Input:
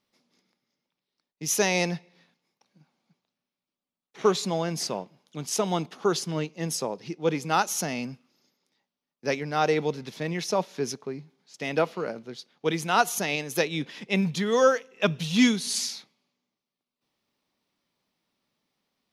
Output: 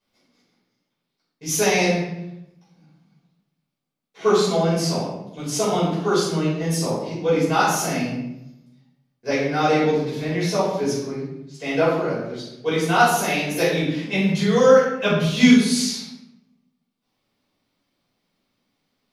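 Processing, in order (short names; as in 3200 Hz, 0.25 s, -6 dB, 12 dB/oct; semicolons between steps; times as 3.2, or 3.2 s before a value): shoebox room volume 250 m³, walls mixed, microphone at 5.2 m; gain -8 dB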